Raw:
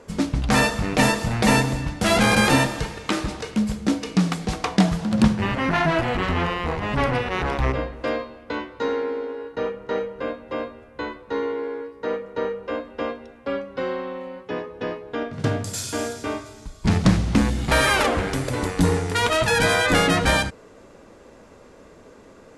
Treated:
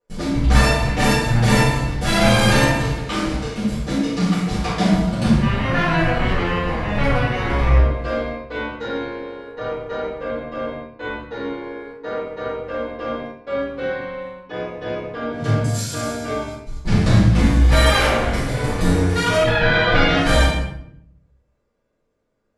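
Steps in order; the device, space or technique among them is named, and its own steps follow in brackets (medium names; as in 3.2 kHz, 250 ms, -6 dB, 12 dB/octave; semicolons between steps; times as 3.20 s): 19.36–20.16 s: low-pass 3.1 kHz -> 5.2 kHz 24 dB/octave; bathroom (reverberation RT60 0.55 s, pre-delay 21 ms, DRR 4 dB); gate -36 dBFS, range -28 dB; simulated room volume 140 m³, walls mixed, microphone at 4.1 m; trim -12.5 dB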